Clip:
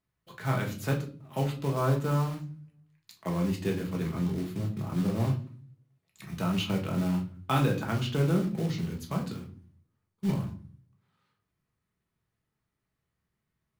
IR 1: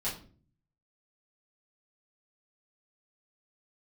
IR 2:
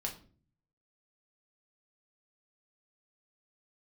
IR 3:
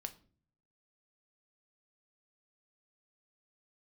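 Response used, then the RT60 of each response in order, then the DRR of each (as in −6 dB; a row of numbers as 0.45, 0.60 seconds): 2; 0.45, 0.45, 0.45 seconds; −9.5, 0.0, 7.5 decibels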